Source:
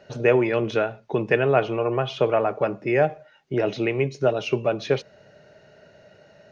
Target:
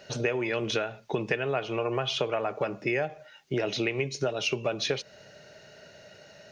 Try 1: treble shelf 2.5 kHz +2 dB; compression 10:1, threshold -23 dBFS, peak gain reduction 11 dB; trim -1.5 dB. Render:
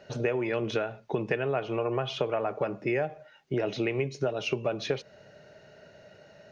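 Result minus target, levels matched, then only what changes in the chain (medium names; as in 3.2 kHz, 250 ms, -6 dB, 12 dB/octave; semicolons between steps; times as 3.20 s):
4 kHz band -5.5 dB
change: treble shelf 2.5 kHz +14 dB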